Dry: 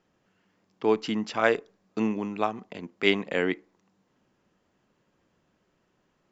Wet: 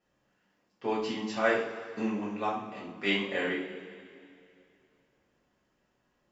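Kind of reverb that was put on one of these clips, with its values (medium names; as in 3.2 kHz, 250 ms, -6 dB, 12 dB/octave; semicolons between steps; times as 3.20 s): two-slope reverb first 0.44 s, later 2.6 s, from -16 dB, DRR -9 dB; trim -12 dB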